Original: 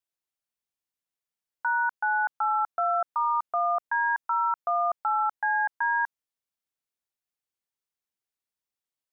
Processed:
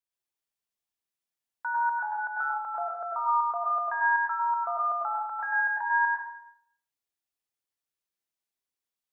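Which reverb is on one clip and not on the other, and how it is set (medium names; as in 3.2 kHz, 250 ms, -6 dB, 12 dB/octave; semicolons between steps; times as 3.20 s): plate-style reverb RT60 0.66 s, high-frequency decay 1×, pre-delay 85 ms, DRR -3.5 dB; trim -5.5 dB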